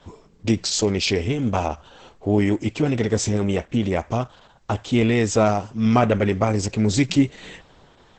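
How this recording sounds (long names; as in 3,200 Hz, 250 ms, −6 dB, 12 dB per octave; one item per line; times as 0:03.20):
Opus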